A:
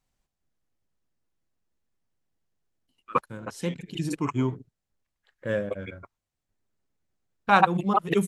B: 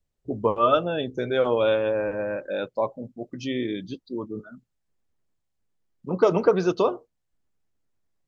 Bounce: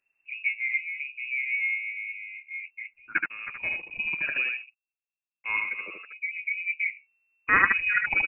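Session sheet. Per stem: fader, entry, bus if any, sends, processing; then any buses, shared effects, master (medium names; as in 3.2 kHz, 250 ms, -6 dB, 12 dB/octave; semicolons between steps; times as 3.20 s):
-2.5 dB, 0.00 s, muted 4.67–5.44 s, no send, echo send -4 dB, none
-2.5 dB, 0.00 s, no send, no echo send, local Wiener filter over 41 samples; steep low-pass 670 Hz 48 dB/octave; endless flanger 12 ms -0.9 Hz; auto duck -13 dB, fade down 0.40 s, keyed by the first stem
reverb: none
echo: delay 75 ms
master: frequency inversion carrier 2.7 kHz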